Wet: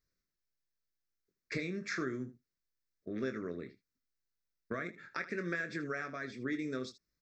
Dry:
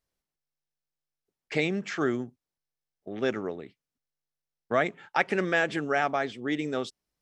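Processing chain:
downward compressor, threshold −32 dBFS, peak gain reduction 13 dB
phaser with its sweep stopped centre 3,000 Hz, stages 6
ambience of single reflections 23 ms −8.5 dB, 78 ms −15 dB

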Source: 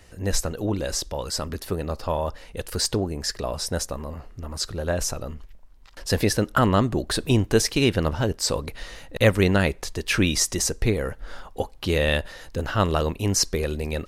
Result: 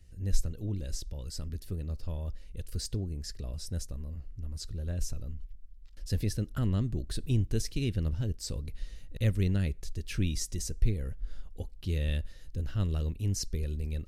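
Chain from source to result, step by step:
guitar amp tone stack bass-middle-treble 10-0-1
level +6.5 dB

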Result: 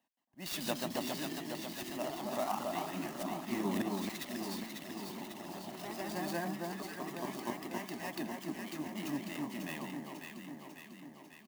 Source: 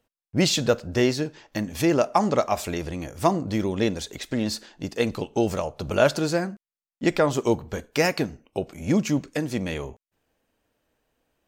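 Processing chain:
high-pass filter 200 Hz 24 dB per octave
comb filter 1.1 ms, depth 91%
volume swells 532 ms
delay with pitch and tempo change per echo 172 ms, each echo +1 semitone, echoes 3
delay that swaps between a low-pass and a high-pass 273 ms, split 1,400 Hz, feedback 78%, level −2.5 dB
converter with an unsteady clock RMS 0.029 ms
level −8.5 dB

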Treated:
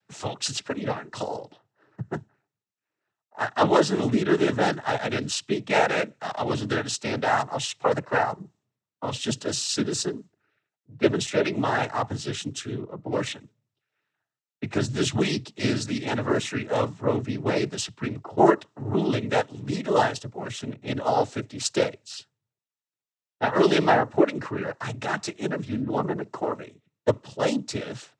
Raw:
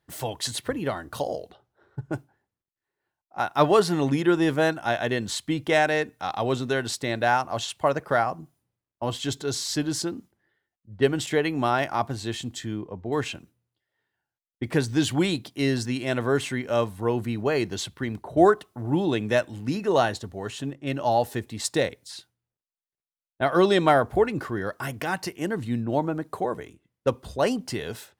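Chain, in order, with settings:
dynamic equaliser 5,900 Hz, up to +4 dB, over −46 dBFS, Q 1.4
cochlear-implant simulation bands 12

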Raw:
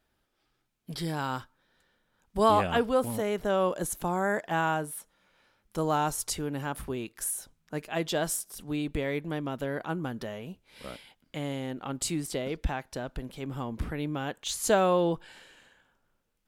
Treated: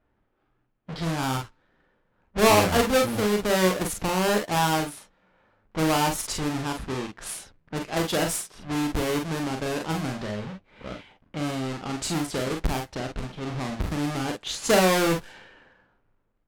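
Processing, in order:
each half-wave held at its own peak
low-pass that shuts in the quiet parts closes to 1,800 Hz, open at −23.5 dBFS
ambience of single reflections 38 ms −6 dB, 48 ms −6.5 dB
level −1 dB

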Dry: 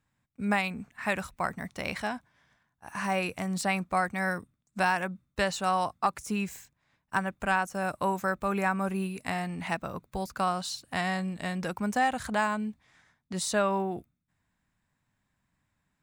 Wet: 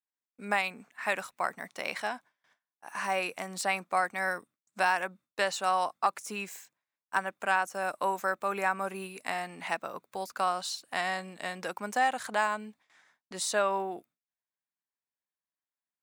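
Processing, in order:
high-pass filter 400 Hz 12 dB per octave
noise gate with hold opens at −55 dBFS

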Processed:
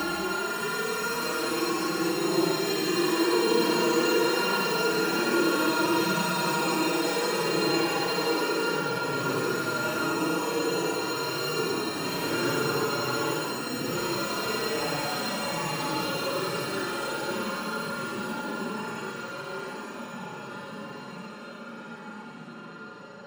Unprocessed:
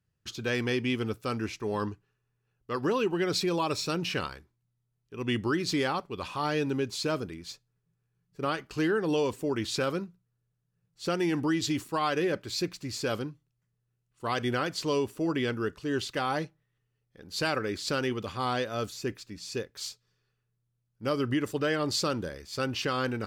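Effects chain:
samples sorted by size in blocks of 32 samples
comb and all-pass reverb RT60 1.9 s, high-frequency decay 0.85×, pre-delay 105 ms, DRR −6.5 dB
frequency shifter +26 Hz
extreme stretch with random phases 13×, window 0.05 s, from 0:08.86
level −5.5 dB

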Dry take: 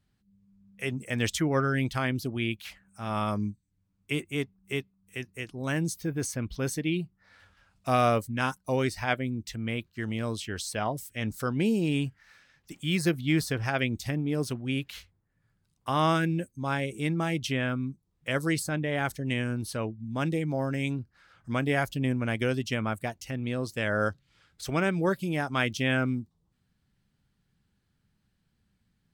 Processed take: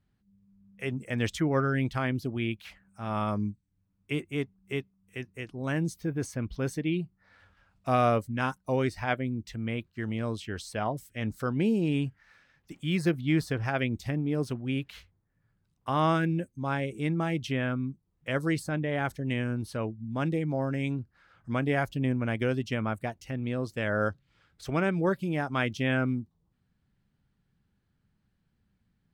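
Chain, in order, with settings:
high-shelf EQ 3,500 Hz −10.5 dB

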